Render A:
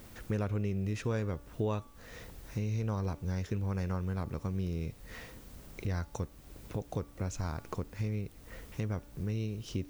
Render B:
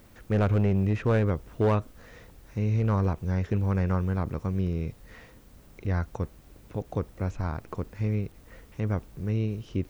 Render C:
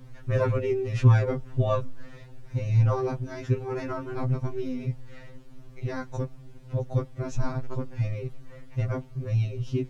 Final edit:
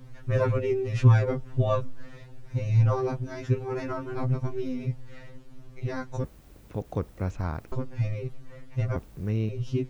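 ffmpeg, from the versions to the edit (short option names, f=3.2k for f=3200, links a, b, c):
-filter_complex "[1:a]asplit=2[a][b];[2:a]asplit=3[c][d][e];[c]atrim=end=6.242[f];[a]atrim=start=6.238:end=7.722[g];[d]atrim=start=7.718:end=8.962[h];[b]atrim=start=8.958:end=9.492[i];[e]atrim=start=9.488[j];[f][g]acrossfade=d=0.004:c1=hsin:c2=hsin[k];[k][h]acrossfade=d=0.004:c1=hsin:c2=hsin[l];[l][i]acrossfade=d=0.004:c1=hsin:c2=hsin[m];[m][j]acrossfade=d=0.004:c1=hsin:c2=hsin"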